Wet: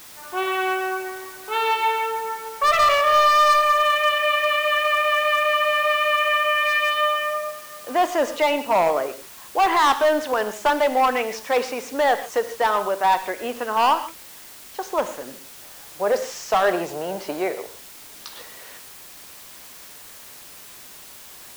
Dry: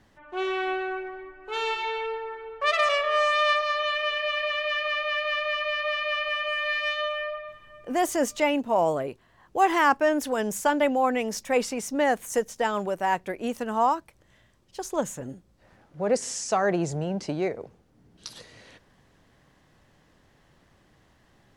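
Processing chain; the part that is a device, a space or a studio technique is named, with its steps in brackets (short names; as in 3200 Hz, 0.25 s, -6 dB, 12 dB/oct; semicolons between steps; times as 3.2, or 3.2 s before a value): drive-through speaker (BPF 430–3900 Hz; bell 1100 Hz +5 dB 0.77 oct; hard clip -19 dBFS, distortion -11 dB; white noise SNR 20 dB); 6.56–8.01 HPF 100 Hz 12 dB/oct; non-linear reverb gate 0.17 s flat, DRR 10 dB; gain +5.5 dB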